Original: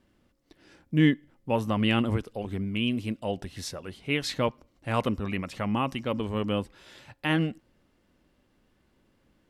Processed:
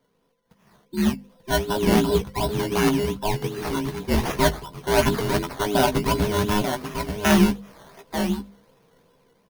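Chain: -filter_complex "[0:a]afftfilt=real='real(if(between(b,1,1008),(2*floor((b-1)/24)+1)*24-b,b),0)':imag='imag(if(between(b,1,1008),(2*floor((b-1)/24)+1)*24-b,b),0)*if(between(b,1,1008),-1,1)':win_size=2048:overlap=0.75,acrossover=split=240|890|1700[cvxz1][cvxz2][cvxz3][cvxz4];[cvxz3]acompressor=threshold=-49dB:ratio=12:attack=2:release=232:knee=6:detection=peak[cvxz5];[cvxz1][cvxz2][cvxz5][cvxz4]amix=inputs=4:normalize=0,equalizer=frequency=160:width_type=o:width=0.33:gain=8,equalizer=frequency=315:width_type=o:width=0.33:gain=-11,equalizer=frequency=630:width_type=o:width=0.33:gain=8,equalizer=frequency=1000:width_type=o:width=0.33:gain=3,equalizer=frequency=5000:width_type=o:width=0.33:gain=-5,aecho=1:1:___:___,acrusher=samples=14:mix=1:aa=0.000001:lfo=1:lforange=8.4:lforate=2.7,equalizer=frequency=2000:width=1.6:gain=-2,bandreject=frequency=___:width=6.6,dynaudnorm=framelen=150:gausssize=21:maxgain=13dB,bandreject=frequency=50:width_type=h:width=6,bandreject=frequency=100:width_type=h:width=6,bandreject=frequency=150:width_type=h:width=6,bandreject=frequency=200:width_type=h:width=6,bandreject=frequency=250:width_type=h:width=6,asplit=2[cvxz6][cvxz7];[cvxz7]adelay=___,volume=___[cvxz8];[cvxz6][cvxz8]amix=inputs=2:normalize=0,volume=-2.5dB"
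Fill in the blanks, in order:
890, 0.447, 7500, 15, -7.5dB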